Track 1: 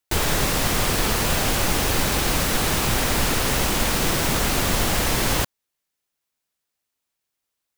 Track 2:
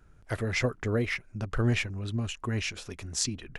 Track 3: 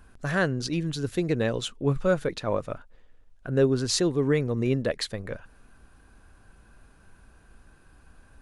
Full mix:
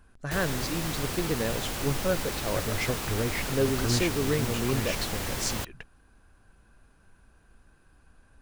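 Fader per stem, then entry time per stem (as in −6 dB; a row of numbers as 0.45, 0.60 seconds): −11.5, −2.5, −4.5 decibels; 0.20, 2.25, 0.00 seconds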